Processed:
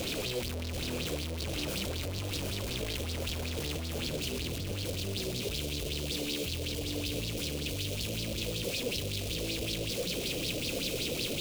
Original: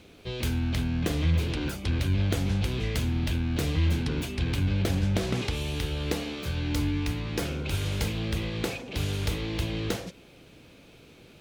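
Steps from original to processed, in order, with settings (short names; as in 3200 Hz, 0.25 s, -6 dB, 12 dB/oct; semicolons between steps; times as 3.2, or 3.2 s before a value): infinite clipping; band shelf 1200 Hz -8 dB, from 4.08 s -15.5 dB; thinning echo 0.756 s, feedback 63%, level -5 dB; LFO bell 5.3 Hz 490–4800 Hz +11 dB; gain -8 dB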